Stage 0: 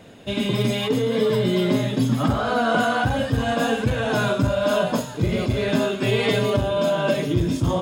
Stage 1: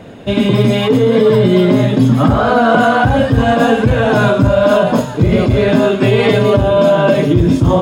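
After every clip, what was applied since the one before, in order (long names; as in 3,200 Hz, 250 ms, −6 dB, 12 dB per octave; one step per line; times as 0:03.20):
high-shelf EQ 2,700 Hz −10.5 dB
boost into a limiter +13 dB
level −1 dB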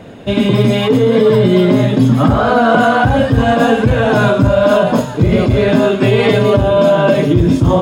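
no processing that can be heard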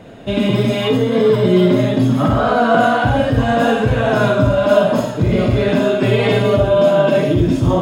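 convolution reverb RT60 0.40 s, pre-delay 15 ms, DRR 3 dB
level −4.5 dB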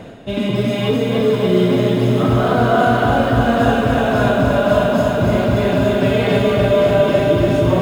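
reversed playback
upward compression, threshold −17 dBFS
reversed playback
feedback echo at a low word length 291 ms, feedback 80%, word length 7 bits, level −4.5 dB
level −3.5 dB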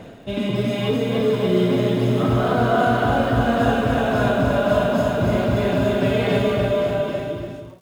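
fade-out on the ending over 1.41 s
surface crackle 290 per second −44 dBFS
level −4 dB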